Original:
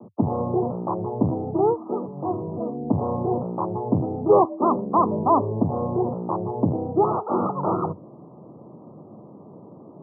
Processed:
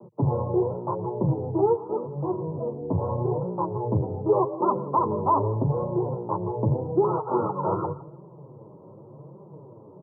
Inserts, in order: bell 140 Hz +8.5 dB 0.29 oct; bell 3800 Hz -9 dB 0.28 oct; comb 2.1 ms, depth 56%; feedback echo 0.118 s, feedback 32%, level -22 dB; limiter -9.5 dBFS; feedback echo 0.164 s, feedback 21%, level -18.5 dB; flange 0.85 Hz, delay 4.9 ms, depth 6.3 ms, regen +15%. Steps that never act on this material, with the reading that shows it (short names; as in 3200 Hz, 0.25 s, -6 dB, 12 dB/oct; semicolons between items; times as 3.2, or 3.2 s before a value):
bell 3800 Hz: input band ends at 1400 Hz